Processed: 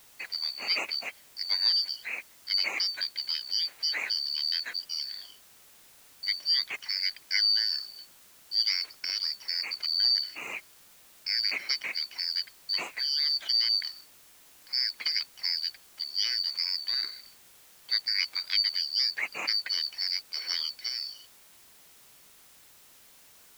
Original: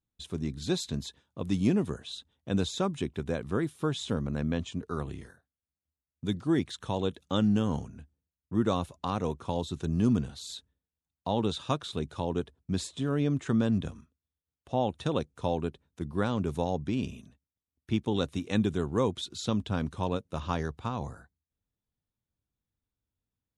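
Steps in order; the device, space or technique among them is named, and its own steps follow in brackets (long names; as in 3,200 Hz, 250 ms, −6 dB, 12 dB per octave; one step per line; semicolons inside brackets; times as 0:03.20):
split-band scrambled radio (band-splitting scrambler in four parts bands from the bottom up 4321; band-pass filter 360–3,100 Hz; white noise bed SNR 24 dB)
level +7.5 dB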